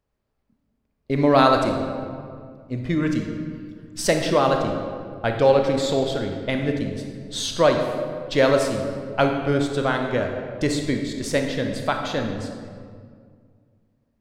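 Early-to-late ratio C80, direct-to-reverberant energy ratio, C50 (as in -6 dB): 6.0 dB, 3.0 dB, 4.5 dB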